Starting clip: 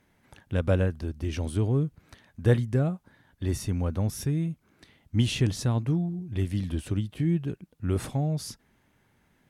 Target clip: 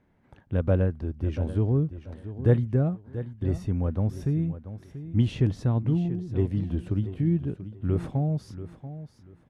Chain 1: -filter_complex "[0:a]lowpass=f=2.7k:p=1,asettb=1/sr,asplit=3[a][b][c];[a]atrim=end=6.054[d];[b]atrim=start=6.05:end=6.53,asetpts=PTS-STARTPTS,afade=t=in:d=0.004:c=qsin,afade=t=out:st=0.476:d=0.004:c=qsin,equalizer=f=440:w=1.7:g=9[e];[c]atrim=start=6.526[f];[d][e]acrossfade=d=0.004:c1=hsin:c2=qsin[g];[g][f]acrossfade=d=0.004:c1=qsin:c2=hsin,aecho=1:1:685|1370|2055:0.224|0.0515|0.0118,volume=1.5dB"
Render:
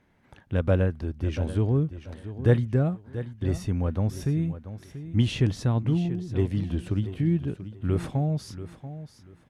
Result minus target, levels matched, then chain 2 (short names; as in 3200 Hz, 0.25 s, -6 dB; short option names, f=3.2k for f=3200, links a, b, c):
2000 Hz band +5.5 dB
-filter_complex "[0:a]lowpass=f=850:p=1,asettb=1/sr,asplit=3[a][b][c];[a]atrim=end=6.054[d];[b]atrim=start=6.05:end=6.53,asetpts=PTS-STARTPTS,afade=t=in:d=0.004:c=qsin,afade=t=out:st=0.476:d=0.004:c=qsin,equalizer=f=440:w=1.7:g=9[e];[c]atrim=start=6.526[f];[d][e]acrossfade=d=0.004:c1=hsin:c2=qsin[g];[g][f]acrossfade=d=0.004:c1=qsin:c2=hsin,aecho=1:1:685|1370|2055:0.224|0.0515|0.0118,volume=1.5dB"